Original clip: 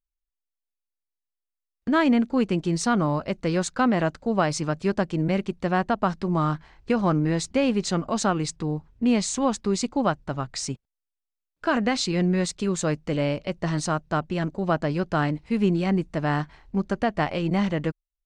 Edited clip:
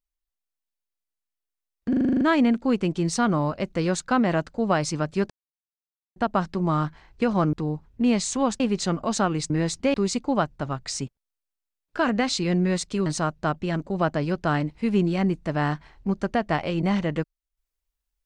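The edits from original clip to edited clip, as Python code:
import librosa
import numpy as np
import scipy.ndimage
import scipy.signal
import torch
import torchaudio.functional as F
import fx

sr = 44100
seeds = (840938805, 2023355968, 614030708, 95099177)

y = fx.edit(x, sr, fx.stutter(start_s=1.89, slice_s=0.04, count=9),
    fx.silence(start_s=4.98, length_s=0.86),
    fx.swap(start_s=7.21, length_s=0.44, other_s=8.55, other_length_s=1.07),
    fx.cut(start_s=12.74, length_s=1.0), tone=tone)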